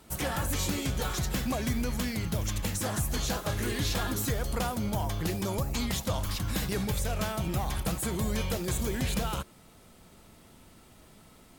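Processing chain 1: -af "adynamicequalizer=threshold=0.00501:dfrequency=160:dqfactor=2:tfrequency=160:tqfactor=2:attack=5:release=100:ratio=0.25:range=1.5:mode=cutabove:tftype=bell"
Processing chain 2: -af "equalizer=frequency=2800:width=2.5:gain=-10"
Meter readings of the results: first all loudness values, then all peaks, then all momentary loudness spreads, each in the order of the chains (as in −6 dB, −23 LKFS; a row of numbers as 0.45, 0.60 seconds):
−31.5, −31.5 LKFS; −19.5, −19.0 dBFS; 2, 2 LU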